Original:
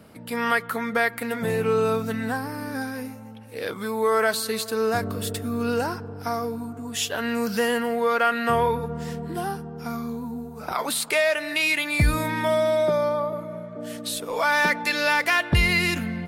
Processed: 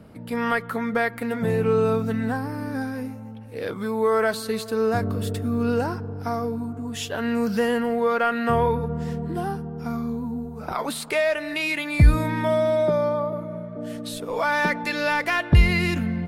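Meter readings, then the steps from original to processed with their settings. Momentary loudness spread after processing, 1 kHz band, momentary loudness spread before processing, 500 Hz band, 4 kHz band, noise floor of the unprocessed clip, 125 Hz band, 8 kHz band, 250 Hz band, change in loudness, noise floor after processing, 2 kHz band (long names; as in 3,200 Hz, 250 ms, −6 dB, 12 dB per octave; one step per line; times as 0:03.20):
11 LU, −1.0 dB, 12 LU, +1.0 dB, −4.5 dB, −41 dBFS, +5.5 dB, −7.0 dB, +3.0 dB, 0.0 dB, −38 dBFS, −3.0 dB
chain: spectral tilt −2 dB per octave
level −1 dB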